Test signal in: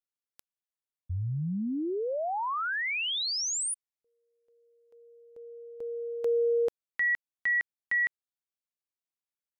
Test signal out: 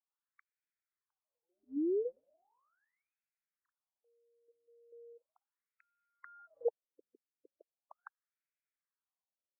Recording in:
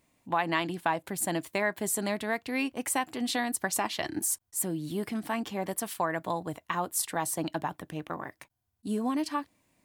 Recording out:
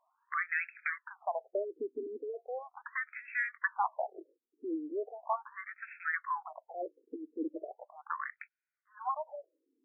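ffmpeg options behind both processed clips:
-filter_complex "[0:a]aeval=exprs='(mod(6.31*val(0)+1,2)-1)/6.31':c=same,asplit=2[a][b];[b]highpass=f=720:p=1,volume=9dB,asoftclip=type=tanh:threshold=-16dB[c];[a][c]amix=inputs=2:normalize=0,lowpass=f=5.4k:p=1,volume=-6dB,afftfilt=real='re*between(b*sr/1024,330*pow(1900/330,0.5+0.5*sin(2*PI*0.38*pts/sr))/1.41,330*pow(1900/330,0.5+0.5*sin(2*PI*0.38*pts/sr))*1.41)':imag='im*between(b*sr/1024,330*pow(1900/330,0.5+0.5*sin(2*PI*0.38*pts/sr))/1.41,330*pow(1900/330,0.5+0.5*sin(2*PI*0.38*pts/sr))*1.41)':win_size=1024:overlap=0.75"

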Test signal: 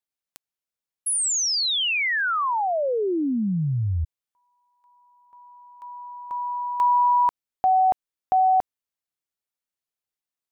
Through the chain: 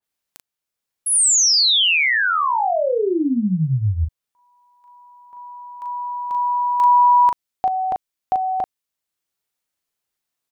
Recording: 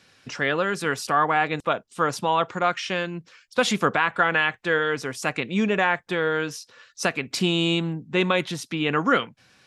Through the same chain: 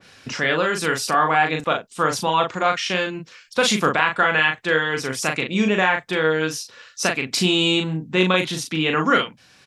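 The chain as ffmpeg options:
-filter_complex "[0:a]asplit=2[a][b];[b]acompressor=threshold=-33dB:ratio=6:attack=0.16:release=718:detection=rms,volume=3dB[c];[a][c]amix=inputs=2:normalize=0,asplit=2[d][e];[e]adelay=38,volume=-4.5dB[f];[d][f]amix=inputs=2:normalize=0,adynamicequalizer=threshold=0.0251:dfrequency=2300:dqfactor=0.7:tfrequency=2300:tqfactor=0.7:attack=5:release=100:ratio=0.375:range=2:mode=boostabove:tftype=highshelf"

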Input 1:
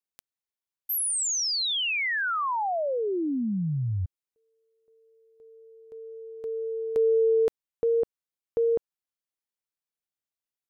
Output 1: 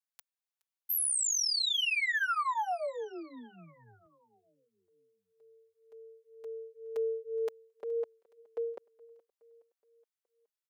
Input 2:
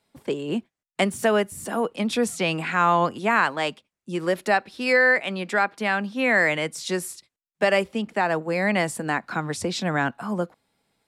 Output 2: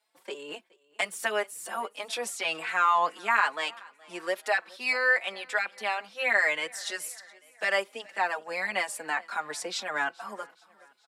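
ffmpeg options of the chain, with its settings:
-filter_complex "[0:a]highpass=710,asplit=2[a][b];[b]aecho=0:1:420|840|1260|1680:0.0631|0.0347|0.0191|0.0105[c];[a][c]amix=inputs=2:normalize=0,asplit=2[d][e];[e]adelay=4.3,afreqshift=2[f];[d][f]amix=inputs=2:normalize=1"

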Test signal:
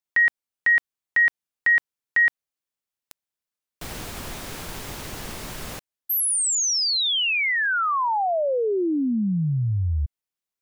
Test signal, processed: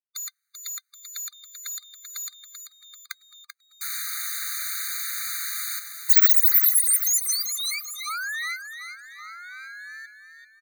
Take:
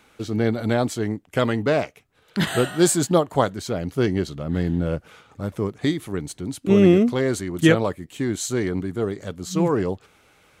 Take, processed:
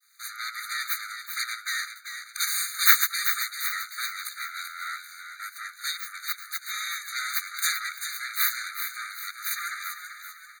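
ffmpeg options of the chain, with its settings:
-filter_complex "[0:a]afftfilt=real='real(if(between(b,1,1008),(2*floor((b-1)/24)+1)*24-b,b),0)':imag='imag(if(between(b,1,1008),(2*floor((b-1)/24)+1)*24-b,b),0)*if(between(b,1,1008),-1,1)':win_size=2048:overlap=0.75,highpass=f=710:p=1,agate=range=-42dB:threshold=-53dB:ratio=3:release=229:detection=rms,adynamicequalizer=threshold=0.0158:dfrequency=1500:dqfactor=0.79:tfrequency=1500:tqfactor=0.79:attack=5:release=100:ratio=0.438:range=3:mode=cutabove:tftype=bell,acrossover=split=2800[a][b];[a]asoftclip=type=tanh:threshold=-25.5dB[c];[b]crystalizer=i=1.5:c=0[d];[c][d]amix=inputs=2:normalize=0,aeval=exprs='abs(val(0))':c=same,asplit=2[e][f];[f]asplit=5[g][h][i][j][k];[g]adelay=388,afreqshift=60,volume=-8.5dB[l];[h]adelay=776,afreqshift=120,volume=-15.4dB[m];[i]adelay=1164,afreqshift=180,volume=-22.4dB[n];[j]adelay=1552,afreqshift=240,volume=-29.3dB[o];[k]adelay=1940,afreqshift=300,volume=-36.2dB[p];[l][m][n][o][p]amix=inputs=5:normalize=0[q];[e][q]amix=inputs=2:normalize=0,afftfilt=real='re*eq(mod(floor(b*sr/1024/1200),2),1)':imag='im*eq(mod(floor(b*sr/1024/1200),2),1)':win_size=1024:overlap=0.75,volume=8dB"

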